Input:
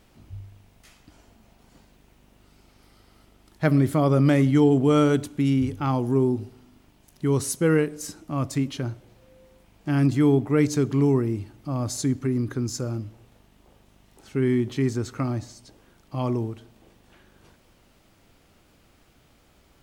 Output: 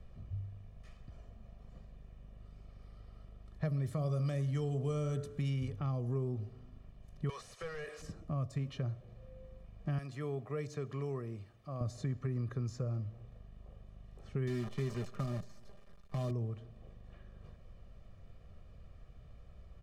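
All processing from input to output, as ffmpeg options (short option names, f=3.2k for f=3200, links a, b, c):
-filter_complex "[0:a]asettb=1/sr,asplit=3[a][b][c];[a]atrim=end=3.864[d];[b]atrim=start=3.86:end=5.68,asetpts=PTS-STARTPTS,afade=t=in:d=0.004:c=qsin,afade=t=out:st=1.816:d=0.004:c=qsin,bass=f=250:g=1,treble=f=4k:g=8,bandreject=f=53.84:t=h:w=4,bandreject=f=107.68:t=h:w=4,bandreject=f=161.52:t=h:w=4,bandreject=f=215.36:t=h:w=4,bandreject=f=269.2:t=h:w=4,bandreject=f=323.04:t=h:w=4,bandreject=f=376.88:t=h:w=4,bandreject=f=430.72:t=h:w=4,bandreject=f=484.56:t=h:w=4,bandreject=f=538.4:t=h:w=4,bandreject=f=592.24:t=h:w=4,bandreject=f=646.08:t=h:w=4,bandreject=f=699.92:t=h:w=4,bandreject=f=753.76:t=h:w=4,bandreject=f=807.6:t=h:w=4,bandreject=f=861.44:t=h:w=4,bandreject=f=915.28:t=h:w=4,bandreject=f=969.12:t=h:w=4,bandreject=f=1.02296k:t=h:w=4,bandreject=f=1.0768k:t=h:w=4,bandreject=f=1.13064k:t=h:w=4,bandreject=f=1.18448k:t=h:w=4,bandreject=f=1.23832k:t=h:w=4,bandreject=f=1.29216k:t=h:w=4,bandreject=f=1.346k:t=h:w=4,bandreject=f=1.39984k:t=h:w=4,bandreject=f=1.45368k:t=h:w=4,bandreject=f=1.50752k:t=h:w=4,bandreject=f=1.56136k:t=h:w=4,bandreject=f=1.6152k:t=h:w=4,bandreject=f=1.66904k:t=h:w=4,bandreject=f=1.72288k:t=h:w=4,bandreject=f=1.77672k:t=h:w=4,bandreject=f=1.83056k:t=h:w=4,bandreject=f=1.8844k:t=h:w=4,bandreject=f=1.93824k:t=h:w=4[e];[c]atrim=start=5.676[f];[d][e]acrossfade=d=0.004:c1=hsin:c2=qsin[g];[g][f]acrossfade=d=0.004:c1=qsin:c2=hsin,asettb=1/sr,asplit=3[h][i][j];[h]atrim=end=7.294[k];[i]atrim=start=7.29:end=8.02,asetpts=PTS-STARTPTS,afade=t=in:d=0.004:c=qsin,afade=t=out:st=0.726:d=0.004:c=qsin,highpass=1.3k,acompressor=threshold=-39dB:ratio=12:attack=3.2:release=140:knee=1:detection=peak,asplit=2[l][m];[m]highpass=f=720:p=1,volume=27dB,asoftclip=type=tanh:threshold=-20.5dB[n];[l][n]amix=inputs=2:normalize=0,lowpass=f=4.4k:p=1,volume=-6dB[o];[j]atrim=start=8.016[p];[k][o]acrossfade=d=0.004:c1=hsin:c2=qsin[q];[q][p]acrossfade=d=0.004:c1=qsin:c2=hsin,asettb=1/sr,asplit=3[r][s][t];[r]atrim=end=9.984[u];[s]atrim=start=9.98:end=11.81,asetpts=PTS-STARTPTS,afade=t=in:d=0.004:c=qsin,afade=t=out:st=1.826:d=0.004:c=qsin,highpass=f=930:p=1,highshelf=f=10k:g=4.5[v];[t]atrim=start=11.806[w];[u][v]acrossfade=d=0.004:c1=hsin:c2=qsin[x];[x][w]acrossfade=d=0.004:c1=qsin:c2=hsin,asettb=1/sr,asplit=3[y][z][aa];[y]atrim=end=14.474[ab];[z]atrim=start=14.47:end=16.31,asetpts=PTS-STARTPTS,afade=t=in:d=0.004:c=qsin,afade=t=out:st=1.836:d=0.004:c=qsin,acrusher=bits=6:dc=4:mix=0:aa=0.000001,aecho=1:1:5:0.52,atrim=end_sample=81144[ac];[aa]atrim=start=16.306[ad];[ab][ac]acrossfade=d=0.004:c1=hsin:c2=qsin[ae];[ae][ad]acrossfade=d=0.004:c1=qsin:c2=hsin,aemphasis=mode=reproduction:type=riaa,aecho=1:1:1.7:0.72,acrossover=split=130|600|4000[af][ag][ah][ai];[af]acompressor=threshold=-41dB:ratio=4[aj];[ag]acompressor=threshold=-29dB:ratio=4[ak];[ah]acompressor=threshold=-40dB:ratio=4[al];[ai]acompressor=threshold=-49dB:ratio=4[am];[aj][ak][al][am]amix=inputs=4:normalize=0,volume=-8.5dB"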